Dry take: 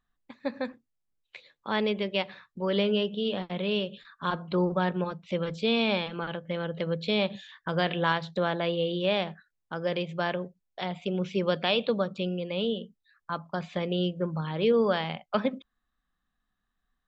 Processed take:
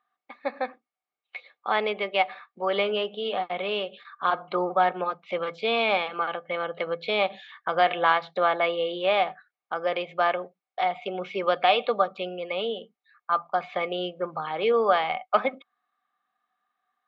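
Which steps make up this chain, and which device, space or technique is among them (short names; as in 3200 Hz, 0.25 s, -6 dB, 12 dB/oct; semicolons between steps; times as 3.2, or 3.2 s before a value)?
tin-can telephone (BPF 460–3200 Hz; small resonant body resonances 750/1200/2200 Hz, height 13 dB, ringing for 45 ms); gain +3.5 dB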